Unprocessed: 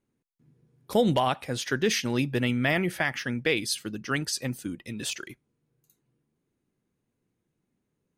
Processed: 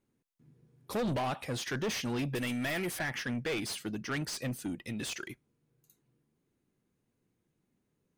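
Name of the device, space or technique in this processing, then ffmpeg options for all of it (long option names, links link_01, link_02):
saturation between pre-emphasis and de-emphasis: -filter_complex "[0:a]asettb=1/sr,asplit=3[link_01][link_02][link_03];[link_01]atrim=end=2.354[link_04];[link_02]atrim=start=2.35:end=2.99,asetpts=PTS-STARTPTS,afade=type=in:duration=0.004:curve=qsin,afade=type=out:start_time=0.636:duration=0.004:curve=qsin,bass=frequency=250:gain=-7,treble=frequency=4000:gain=12[link_05];[link_03]atrim=start=2.986[link_06];[link_04][link_05]acrossfade=duration=0.004:curve1=hsin:curve2=qsin[link_07];[link_07][link_06]acrossfade=duration=0.004:curve1=qsin:curve2=hsin,highshelf=frequency=5400:gain=12,asoftclip=type=tanh:threshold=-29dB,highshelf=frequency=5400:gain=-12"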